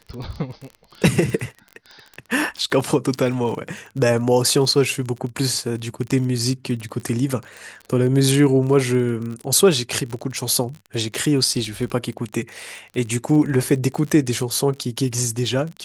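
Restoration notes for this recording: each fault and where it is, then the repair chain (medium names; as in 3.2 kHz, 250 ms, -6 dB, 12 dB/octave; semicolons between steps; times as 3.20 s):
crackle 31 per s -28 dBFS
6.11–6.12 s: dropout 7.5 ms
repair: de-click; interpolate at 6.11 s, 7.5 ms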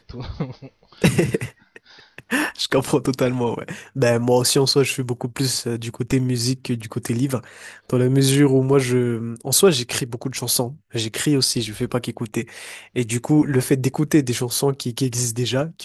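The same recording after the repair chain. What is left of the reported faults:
nothing left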